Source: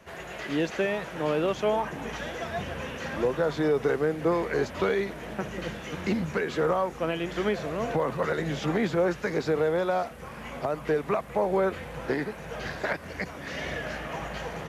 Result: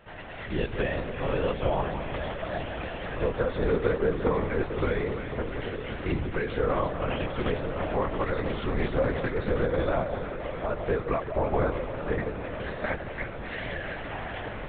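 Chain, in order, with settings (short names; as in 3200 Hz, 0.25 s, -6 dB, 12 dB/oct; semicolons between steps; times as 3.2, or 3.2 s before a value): echo with dull and thin repeats by turns 0.167 s, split 1000 Hz, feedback 85%, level -7.5 dB; LPC vocoder at 8 kHz whisper; 7.33–9.51 Doppler distortion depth 0.21 ms; gain -1.5 dB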